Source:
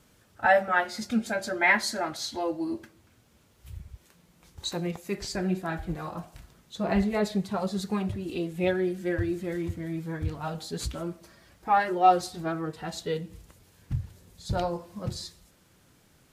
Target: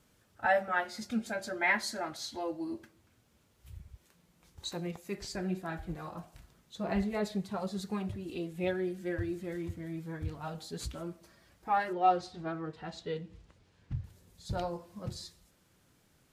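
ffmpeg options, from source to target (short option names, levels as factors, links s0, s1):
-filter_complex "[0:a]asettb=1/sr,asplit=3[s0][s1][s2];[s0]atrim=end=11.934[s3];[s1]atrim=start=11.93:end=14.04,asetpts=PTS-STARTPTS,afade=t=in:d=0.004:c=qsin,afade=t=out:st=2.106:d=0.004:c=qsin,lowpass=4700[s4];[s2]atrim=start=14.036[s5];[s3][s4]acrossfade=d=0.004:c1=hsin:c2=qsin[s6];[s6][s5]acrossfade=d=0.004:c1=qsin:c2=hsin,volume=0.473"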